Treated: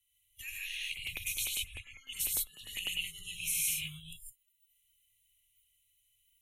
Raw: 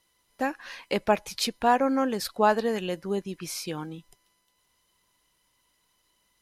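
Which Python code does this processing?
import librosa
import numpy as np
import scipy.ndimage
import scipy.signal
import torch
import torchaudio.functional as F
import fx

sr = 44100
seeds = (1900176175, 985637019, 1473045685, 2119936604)

y = fx.high_shelf(x, sr, hz=7800.0, db=7.0)
y = fx.over_compress(y, sr, threshold_db=-29.0, ratio=-1.0)
y = scipy.signal.sosfilt(scipy.signal.ellip(3, 1.0, 50, [100.0, 2600.0], 'bandstop', fs=sr, output='sos'), y)
y = fx.peak_eq(y, sr, hz=180.0, db=11.0, octaves=0.52)
y = fx.fixed_phaser(y, sr, hz=1000.0, stages=8)
y = fx.rev_gated(y, sr, seeds[0], gate_ms=180, shape='rising', drr_db=-4.0)
y = fx.noise_reduce_blind(y, sr, reduce_db=23)
y = fx.filter_lfo_notch(y, sr, shape='saw_up', hz=10.0, low_hz=450.0, high_hz=5200.0, q=0.82, at=(0.87, 3.04))
y = fx.band_squash(y, sr, depth_pct=40)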